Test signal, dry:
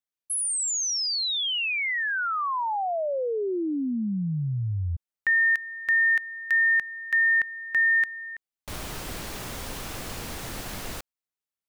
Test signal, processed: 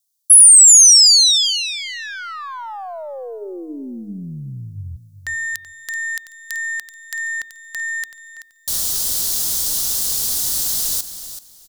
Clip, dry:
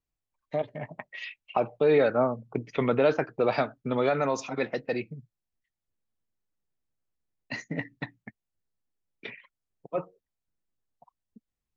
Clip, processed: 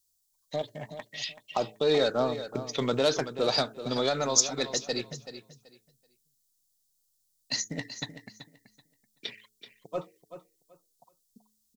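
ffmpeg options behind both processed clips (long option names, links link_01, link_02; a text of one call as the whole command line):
ffmpeg -i in.wav -filter_complex "[0:a]aeval=exprs='0.282*(cos(1*acos(clip(val(0)/0.282,-1,1)))-cos(1*PI/2))+0.0112*(cos(2*acos(clip(val(0)/0.282,-1,1)))-cos(2*PI/2))+0.00355*(cos(8*acos(clip(val(0)/0.282,-1,1)))-cos(8*PI/2))':channel_layout=same,aexciter=amount=10.4:drive=6.5:freq=3600,bandreject=frequency=107.7:width_type=h:width=4,bandreject=frequency=215.4:width_type=h:width=4,bandreject=frequency=323.1:width_type=h:width=4,bandreject=frequency=430.8:width_type=h:width=4,asplit=2[link_01][link_02];[link_02]aecho=0:1:381|762|1143:0.251|0.0527|0.0111[link_03];[link_01][link_03]amix=inputs=2:normalize=0,volume=-3dB" out.wav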